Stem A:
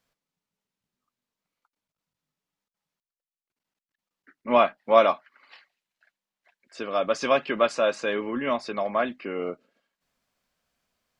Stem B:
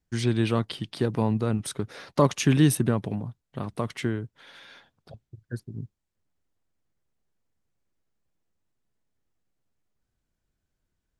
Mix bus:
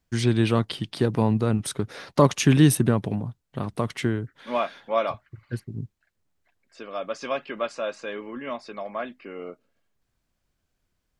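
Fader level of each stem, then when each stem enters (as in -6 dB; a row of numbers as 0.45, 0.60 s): -6.5, +3.0 dB; 0.00, 0.00 s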